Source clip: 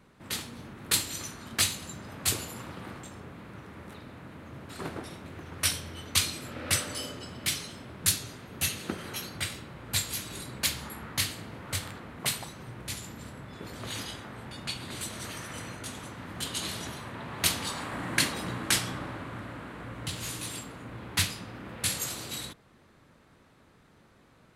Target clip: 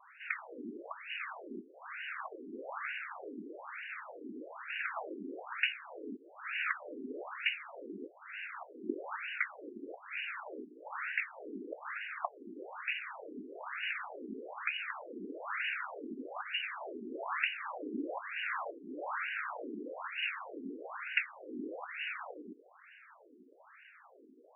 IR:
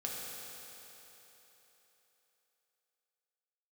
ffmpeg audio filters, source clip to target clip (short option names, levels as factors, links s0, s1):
-af "equalizer=f=3400:w=2.8:g=12.5,acompressor=threshold=0.0251:ratio=16,highshelf=f=2400:g=10.5,afftfilt=real='re*between(b*sr/1024,300*pow(2100/300,0.5+0.5*sin(2*PI*1.1*pts/sr))/1.41,300*pow(2100/300,0.5+0.5*sin(2*PI*1.1*pts/sr))*1.41)':imag='im*between(b*sr/1024,300*pow(2100/300,0.5+0.5*sin(2*PI*1.1*pts/sr))/1.41,300*pow(2100/300,0.5+0.5*sin(2*PI*1.1*pts/sr))*1.41)':win_size=1024:overlap=0.75,volume=2.11"